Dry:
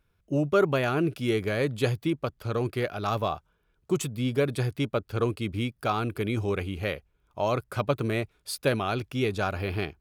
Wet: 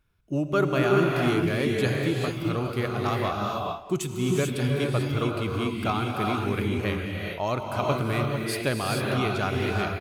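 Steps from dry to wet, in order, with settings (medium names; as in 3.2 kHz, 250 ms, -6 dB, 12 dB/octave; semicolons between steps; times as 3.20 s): peaking EQ 490 Hz -5 dB 0.54 oct; speakerphone echo 210 ms, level -13 dB; gated-style reverb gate 470 ms rising, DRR -0.5 dB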